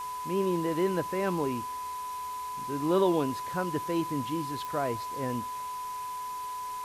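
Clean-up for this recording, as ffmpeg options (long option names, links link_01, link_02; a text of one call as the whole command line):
ffmpeg -i in.wav -af "adeclick=threshold=4,bandreject=frequency=420.4:width_type=h:width=4,bandreject=frequency=840.8:width_type=h:width=4,bandreject=frequency=1261.2:width_type=h:width=4,bandreject=frequency=1681.6:width_type=h:width=4,bandreject=frequency=2102:width_type=h:width=4,bandreject=frequency=2522.4:width_type=h:width=4,bandreject=frequency=1000:width=30,afwtdn=0.004" out.wav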